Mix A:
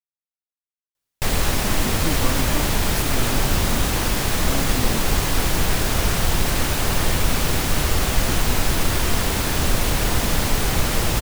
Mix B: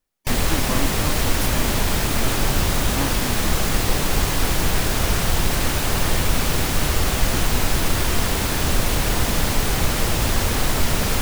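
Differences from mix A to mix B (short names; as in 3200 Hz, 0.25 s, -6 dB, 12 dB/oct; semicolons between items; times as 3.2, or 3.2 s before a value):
speech: entry -1.55 s; background: entry -0.95 s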